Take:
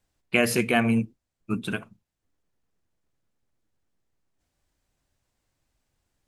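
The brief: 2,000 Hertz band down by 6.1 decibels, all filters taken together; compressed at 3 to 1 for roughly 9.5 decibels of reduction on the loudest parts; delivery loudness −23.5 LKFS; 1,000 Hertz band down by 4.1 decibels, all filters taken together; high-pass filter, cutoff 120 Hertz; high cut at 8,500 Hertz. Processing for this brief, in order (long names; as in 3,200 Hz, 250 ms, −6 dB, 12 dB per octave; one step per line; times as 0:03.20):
high-pass filter 120 Hz
low-pass filter 8,500 Hz
parametric band 1,000 Hz −6 dB
parametric band 2,000 Hz −6.5 dB
downward compressor 3 to 1, threshold −33 dBFS
level +13 dB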